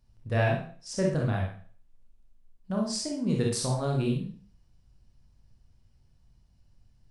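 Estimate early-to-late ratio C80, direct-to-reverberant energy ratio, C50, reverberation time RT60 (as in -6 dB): 8.5 dB, -1.0 dB, 2.0 dB, 0.45 s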